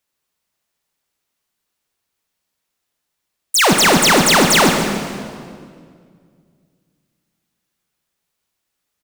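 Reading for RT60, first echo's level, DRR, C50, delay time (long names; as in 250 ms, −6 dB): 2.1 s, −10.5 dB, 3.5 dB, 4.0 dB, 146 ms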